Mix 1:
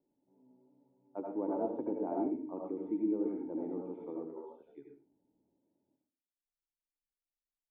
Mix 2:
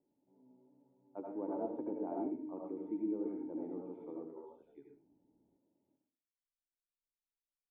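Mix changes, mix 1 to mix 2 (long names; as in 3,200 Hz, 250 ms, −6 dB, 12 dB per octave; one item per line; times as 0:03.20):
speech −4.5 dB
second sound +5.5 dB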